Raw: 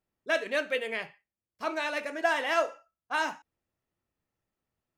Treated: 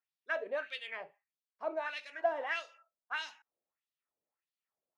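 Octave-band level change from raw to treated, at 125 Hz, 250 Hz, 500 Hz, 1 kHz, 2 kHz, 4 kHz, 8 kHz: can't be measured, −14.0 dB, −6.5 dB, −8.5 dB, −8.0 dB, −7.5 dB, below −10 dB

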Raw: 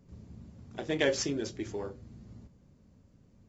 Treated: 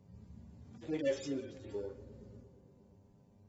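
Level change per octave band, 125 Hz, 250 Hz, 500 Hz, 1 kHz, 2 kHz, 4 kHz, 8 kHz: −7.0 dB, −5.0 dB, −5.0 dB, −13.5 dB, −14.0 dB, −14.5 dB, can't be measured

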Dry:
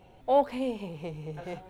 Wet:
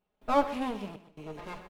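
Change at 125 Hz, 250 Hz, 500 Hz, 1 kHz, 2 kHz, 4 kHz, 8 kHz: −7.5 dB, 0.0 dB, −4.5 dB, −0.5 dB, +4.5 dB, +1.0 dB, can't be measured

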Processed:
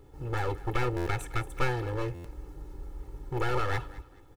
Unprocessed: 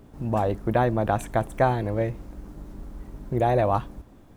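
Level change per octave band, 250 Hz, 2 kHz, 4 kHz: −9.5, −0.5, +2.5 decibels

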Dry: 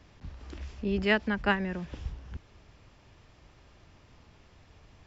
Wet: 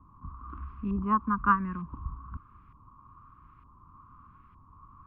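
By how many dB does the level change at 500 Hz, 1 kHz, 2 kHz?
−14.0, +8.5, −7.0 decibels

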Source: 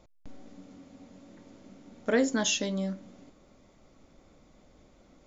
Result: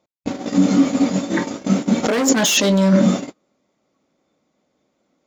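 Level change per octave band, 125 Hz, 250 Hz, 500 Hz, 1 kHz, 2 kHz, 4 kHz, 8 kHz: +20.5 dB, +18.0 dB, +12.0 dB, +16.0 dB, +11.5 dB, +13.0 dB, can't be measured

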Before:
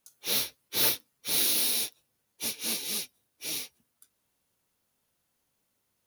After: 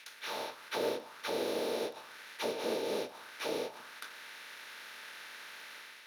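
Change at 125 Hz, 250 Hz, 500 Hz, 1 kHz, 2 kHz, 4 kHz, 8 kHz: −5.5, +2.0, +10.0, +6.0, −1.5, −10.5, −18.0 decibels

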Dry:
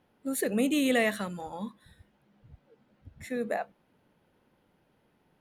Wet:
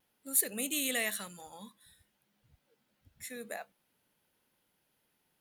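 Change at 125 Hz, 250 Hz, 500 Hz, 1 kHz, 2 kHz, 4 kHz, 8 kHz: −14.0, −13.5, −12.0, −10.5, −5.0, −1.0, +7.0 decibels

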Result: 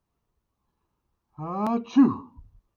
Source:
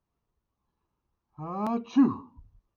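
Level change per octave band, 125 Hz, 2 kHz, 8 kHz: +3.5 dB, +3.5 dB, can't be measured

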